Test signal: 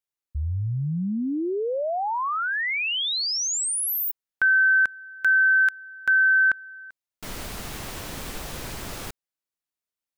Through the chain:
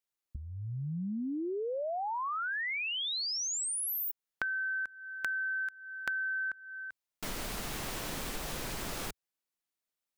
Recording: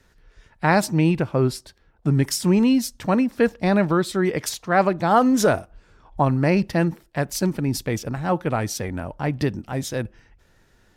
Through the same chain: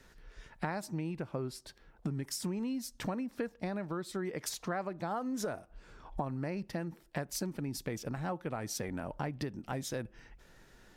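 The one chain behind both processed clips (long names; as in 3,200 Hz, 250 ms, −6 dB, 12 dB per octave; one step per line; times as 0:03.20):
dynamic equaliser 3,100 Hz, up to −4 dB, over −39 dBFS, Q 1.9
downward compressor 12 to 1, threshold −33 dBFS
parametric band 80 Hz −8.5 dB 0.75 octaves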